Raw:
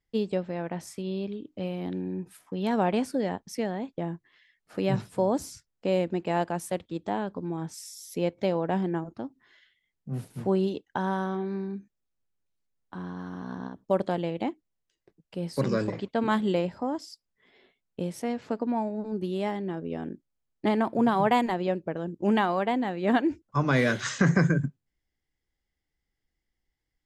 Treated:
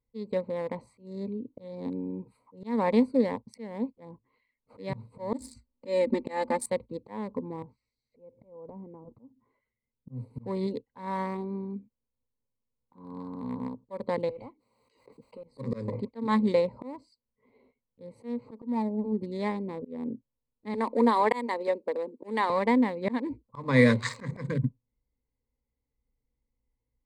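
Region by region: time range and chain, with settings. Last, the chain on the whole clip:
5.33–6.66 high shelf 3500 Hz +5.5 dB + comb 3.4 ms, depth 80% + small resonant body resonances 240/400/1900 Hz, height 9 dB, ringing for 65 ms
7.62–10.1 compressor 12:1, threshold -36 dBFS + tape spacing loss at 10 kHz 41 dB
14.29–15.44 HPF 1200 Hz 6 dB/oct + hard clip -39.5 dBFS + backwards sustainer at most 28 dB/s
20.74–22.5 HPF 280 Hz 24 dB/oct + high shelf 5900 Hz +7 dB + mismatched tape noise reduction encoder only
whole clip: Wiener smoothing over 25 samples; ripple EQ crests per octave 0.97, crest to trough 14 dB; auto swell 0.254 s

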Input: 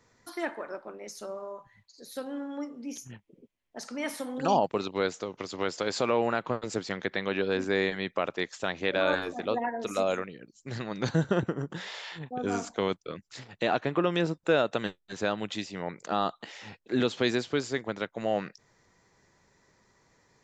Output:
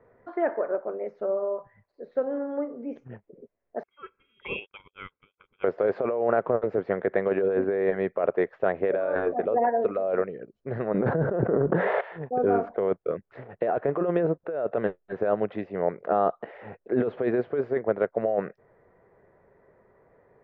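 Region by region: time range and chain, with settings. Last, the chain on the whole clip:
3.83–5.64 comb 0.9 ms, depth 96% + inverted band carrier 3500 Hz + upward expander 2.5:1, over -42 dBFS
10.94–12.01 HPF 120 Hz + high shelf 2600 Hz -11.5 dB + fast leveller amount 70%
whole clip: LPF 1800 Hz 24 dB/oct; band shelf 520 Hz +9.5 dB 1.1 oct; negative-ratio compressor -23 dBFS, ratio -1

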